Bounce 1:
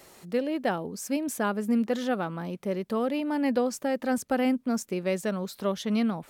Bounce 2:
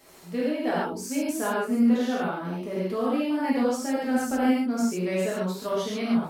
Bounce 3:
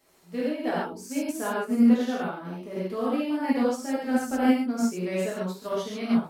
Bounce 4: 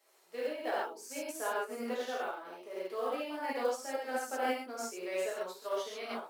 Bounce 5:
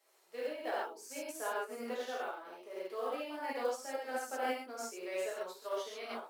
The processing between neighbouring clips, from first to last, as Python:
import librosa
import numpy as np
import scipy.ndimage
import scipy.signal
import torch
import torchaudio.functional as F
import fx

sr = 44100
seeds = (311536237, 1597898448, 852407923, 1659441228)

y1 = fx.rev_gated(x, sr, seeds[0], gate_ms=170, shape='flat', drr_db=-8.0)
y1 = y1 * librosa.db_to_amplitude(-6.5)
y2 = fx.upward_expand(y1, sr, threshold_db=-43.0, expansion=1.5)
y2 = y2 * librosa.db_to_amplitude(2.5)
y3 = scipy.signal.sosfilt(scipy.signal.butter(4, 410.0, 'highpass', fs=sr, output='sos'), y2)
y3 = fx.quant_float(y3, sr, bits=4)
y3 = y3 * librosa.db_to_amplitude(-4.5)
y4 = scipy.signal.sosfilt(scipy.signal.butter(2, 220.0, 'highpass', fs=sr, output='sos'), y3)
y4 = y4 * librosa.db_to_amplitude(-2.5)